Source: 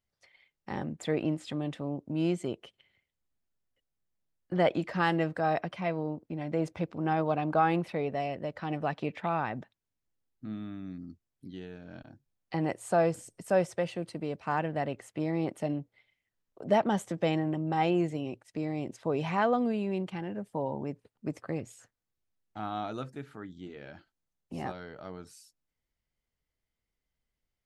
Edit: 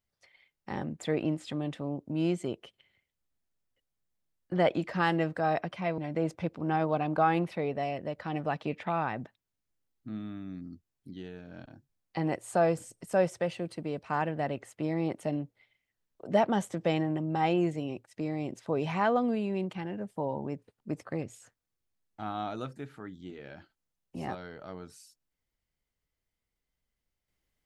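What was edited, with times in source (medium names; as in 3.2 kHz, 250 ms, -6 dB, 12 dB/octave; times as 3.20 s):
5.98–6.35 s: delete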